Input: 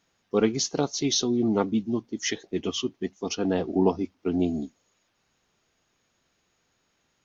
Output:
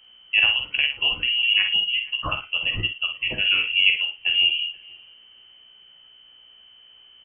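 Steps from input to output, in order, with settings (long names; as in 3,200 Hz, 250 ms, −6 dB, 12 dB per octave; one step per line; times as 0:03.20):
mains hum 60 Hz, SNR 35 dB
ambience of single reflections 15 ms −7.5 dB, 63 ms −11 dB
voice inversion scrambler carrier 3,100 Hz
in parallel at +2 dB: downward compressor, threshold −34 dBFS, peak gain reduction 18 dB
on the sum: double-tracking delay 48 ms −7.5 dB
on a send: feedback echo with a low-pass in the loop 477 ms, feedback 28%, low-pass 1,800 Hz, level −21 dB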